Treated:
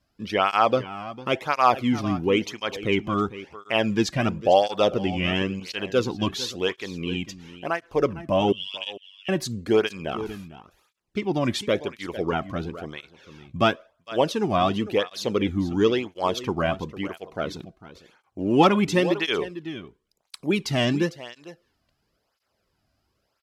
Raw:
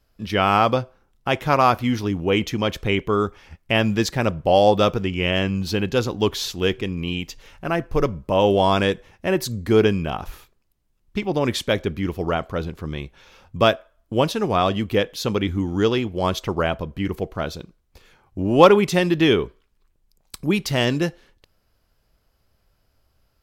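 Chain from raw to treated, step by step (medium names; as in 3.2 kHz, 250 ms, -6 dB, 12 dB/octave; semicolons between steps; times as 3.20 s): low-pass 10 kHz 12 dB/octave; 5.60–6.36 s: expander -24 dBFS; 8.52–9.29 s: ladder high-pass 2.8 kHz, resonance 85%; delay 452 ms -15 dB; cancelling through-zero flanger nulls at 0.96 Hz, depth 2.4 ms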